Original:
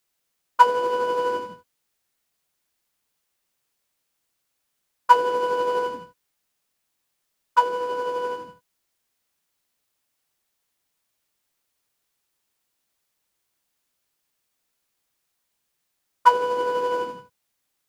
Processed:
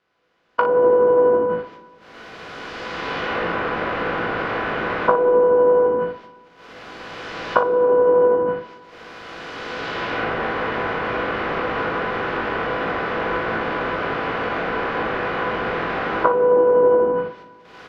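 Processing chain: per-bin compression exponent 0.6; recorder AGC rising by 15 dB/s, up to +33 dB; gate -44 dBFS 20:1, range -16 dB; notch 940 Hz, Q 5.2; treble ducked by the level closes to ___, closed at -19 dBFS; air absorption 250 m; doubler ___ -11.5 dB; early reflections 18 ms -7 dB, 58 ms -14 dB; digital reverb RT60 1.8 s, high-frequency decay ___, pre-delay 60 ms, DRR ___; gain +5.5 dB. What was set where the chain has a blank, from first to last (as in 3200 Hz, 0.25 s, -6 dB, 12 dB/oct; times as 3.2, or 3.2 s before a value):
770 Hz, 40 ms, 0.75×, 17 dB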